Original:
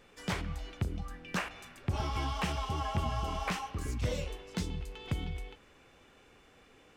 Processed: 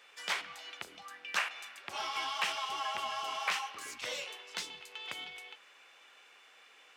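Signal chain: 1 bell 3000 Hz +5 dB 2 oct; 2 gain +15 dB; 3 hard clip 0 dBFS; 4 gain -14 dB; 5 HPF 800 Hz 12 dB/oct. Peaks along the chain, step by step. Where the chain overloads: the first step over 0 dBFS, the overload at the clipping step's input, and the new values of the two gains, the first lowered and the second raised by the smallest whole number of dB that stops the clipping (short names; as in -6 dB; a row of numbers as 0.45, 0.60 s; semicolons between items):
-17.0, -2.0, -2.0, -16.0, -17.5 dBFS; no overload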